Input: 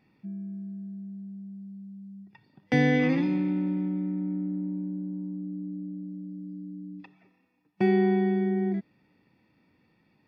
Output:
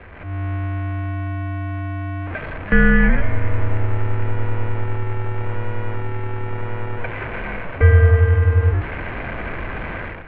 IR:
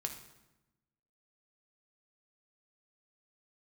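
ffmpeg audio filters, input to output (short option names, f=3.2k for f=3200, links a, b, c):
-af "aeval=exprs='val(0)+0.5*0.0237*sgn(val(0))':c=same,highpass=f=220:t=q:w=0.5412,highpass=f=220:t=q:w=1.307,lowpass=f=2.7k:t=q:w=0.5176,lowpass=f=2.7k:t=q:w=0.7071,lowpass=f=2.7k:t=q:w=1.932,afreqshift=-290,dynaudnorm=f=120:g=5:m=14dB"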